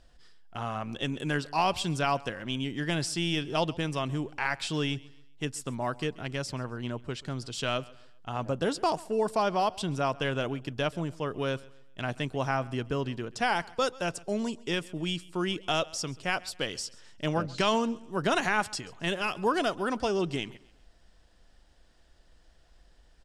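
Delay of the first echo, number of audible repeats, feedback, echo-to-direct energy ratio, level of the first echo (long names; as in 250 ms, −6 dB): 134 ms, 2, 37%, −21.5 dB, −22.0 dB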